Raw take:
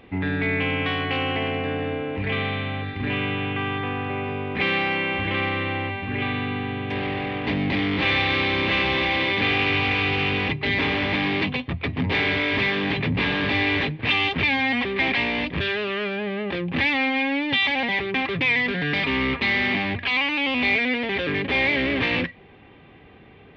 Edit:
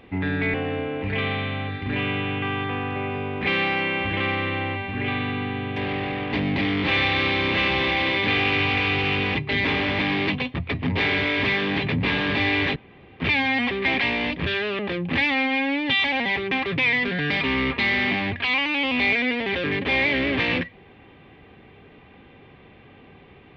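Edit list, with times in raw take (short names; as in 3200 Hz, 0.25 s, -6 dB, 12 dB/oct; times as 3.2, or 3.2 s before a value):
0.54–1.68 cut
13.9–14.34 room tone
15.93–16.42 cut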